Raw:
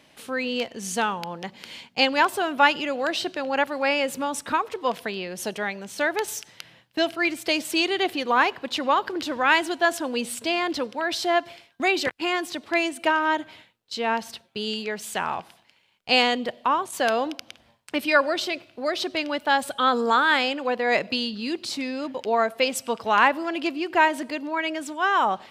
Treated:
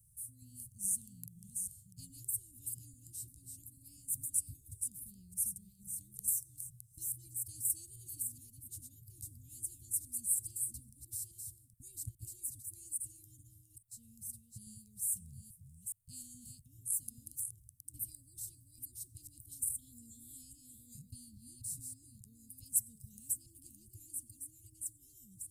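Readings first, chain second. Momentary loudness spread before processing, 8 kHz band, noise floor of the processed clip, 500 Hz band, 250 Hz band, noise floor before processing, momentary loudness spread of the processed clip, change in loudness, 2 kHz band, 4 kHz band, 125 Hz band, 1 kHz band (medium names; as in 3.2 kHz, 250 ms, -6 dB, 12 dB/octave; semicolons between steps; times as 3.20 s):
11 LU, +1.0 dB, -65 dBFS, under -40 dB, -31.5 dB, -61 dBFS, 19 LU, -15.0 dB, under -40 dB, -37.0 dB, -4.5 dB, under -40 dB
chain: chunks repeated in reverse 419 ms, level -5 dB; Chebyshev band-stop 120–8700 Hz, order 4; trim +5 dB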